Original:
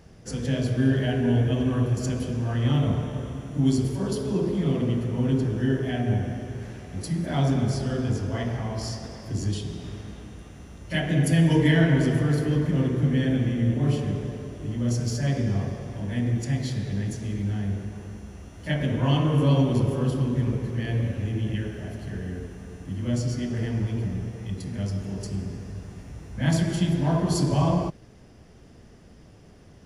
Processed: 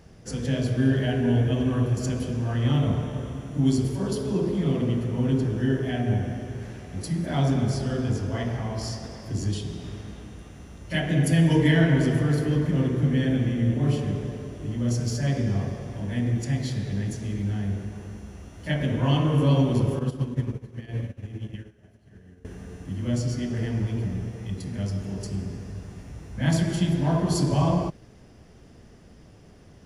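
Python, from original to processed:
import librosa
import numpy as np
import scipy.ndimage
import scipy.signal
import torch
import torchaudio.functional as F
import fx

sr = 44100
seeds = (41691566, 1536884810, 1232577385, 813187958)

y = fx.upward_expand(x, sr, threshold_db=-36.0, expansion=2.5, at=(19.99, 22.45))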